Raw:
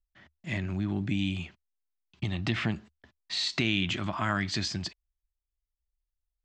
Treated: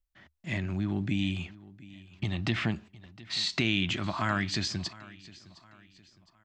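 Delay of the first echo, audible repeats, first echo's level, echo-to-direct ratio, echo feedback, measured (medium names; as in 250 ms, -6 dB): 711 ms, 2, -20.0 dB, -19.5 dB, 40%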